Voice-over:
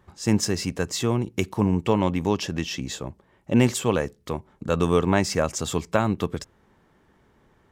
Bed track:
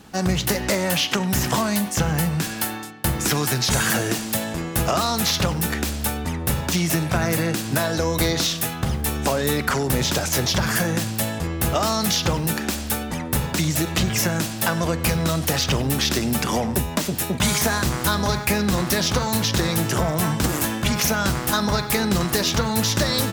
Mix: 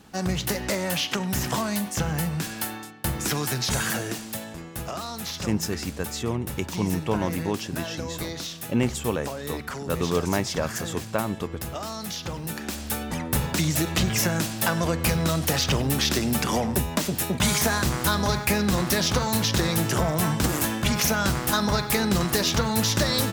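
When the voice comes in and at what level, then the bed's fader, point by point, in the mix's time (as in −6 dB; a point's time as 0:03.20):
5.20 s, −4.5 dB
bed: 0:03.75 −5 dB
0:04.73 −12 dB
0:12.22 −12 dB
0:13.16 −2 dB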